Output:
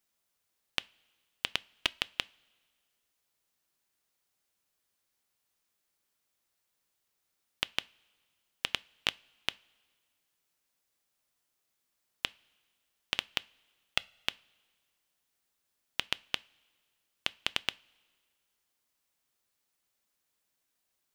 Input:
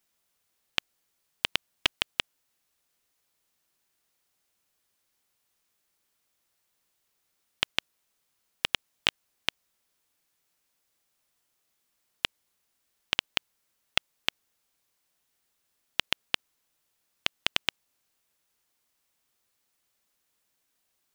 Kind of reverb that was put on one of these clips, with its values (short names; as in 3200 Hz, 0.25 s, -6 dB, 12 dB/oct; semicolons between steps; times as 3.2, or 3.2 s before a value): two-slope reverb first 0.28 s, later 1.8 s, from -18 dB, DRR 19 dB; gain -4.5 dB